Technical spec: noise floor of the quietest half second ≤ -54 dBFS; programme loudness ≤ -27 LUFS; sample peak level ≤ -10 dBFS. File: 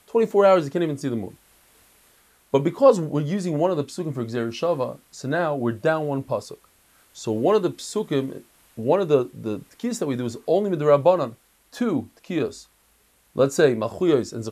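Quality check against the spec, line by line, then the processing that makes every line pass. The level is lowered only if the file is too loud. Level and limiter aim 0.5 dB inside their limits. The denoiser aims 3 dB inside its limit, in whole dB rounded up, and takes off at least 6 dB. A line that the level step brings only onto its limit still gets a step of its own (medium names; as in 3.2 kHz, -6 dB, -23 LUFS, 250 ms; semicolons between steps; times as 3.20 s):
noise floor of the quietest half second -61 dBFS: pass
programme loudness -23.0 LUFS: fail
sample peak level -3.5 dBFS: fail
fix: trim -4.5 dB; peak limiter -10.5 dBFS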